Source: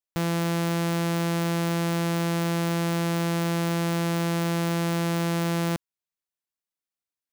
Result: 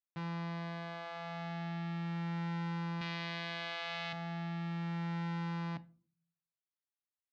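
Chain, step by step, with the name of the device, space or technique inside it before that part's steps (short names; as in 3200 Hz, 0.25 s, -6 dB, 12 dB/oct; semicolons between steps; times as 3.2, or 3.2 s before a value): barber-pole flanger into a guitar amplifier (endless flanger 9.3 ms -0.37 Hz; soft clip -29.5 dBFS, distortion -11 dB; speaker cabinet 110–4000 Hz, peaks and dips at 340 Hz -5 dB, 490 Hz -7 dB, 3100 Hz -3 dB); 3.01–4.13 weighting filter D; shoebox room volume 280 m³, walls furnished, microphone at 0.33 m; gain -5.5 dB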